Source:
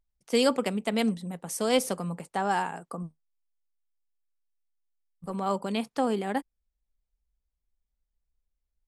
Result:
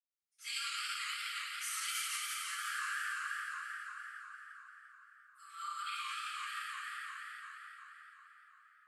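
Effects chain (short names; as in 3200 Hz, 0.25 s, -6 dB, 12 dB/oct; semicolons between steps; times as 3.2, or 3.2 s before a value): reverb RT60 5.0 s, pre-delay 0.102 s; limiter -21.5 dBFS, peak gain reduction 9 dB; Chebyshev high-pass 1200 Hz, order 10; warbling echo 0.173 s, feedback 70%, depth 167 cents, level -5 dB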